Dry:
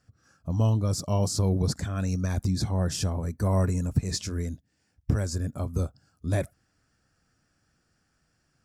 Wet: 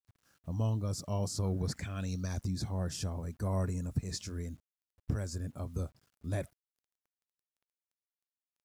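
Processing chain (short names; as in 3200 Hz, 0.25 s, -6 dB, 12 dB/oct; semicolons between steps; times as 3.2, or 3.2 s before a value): requantised 10-bit, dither none; 1.43–2.41 bell 1200 Hz -> 6000 Hz +14 dB 0.46 oct; gain -8.5 dB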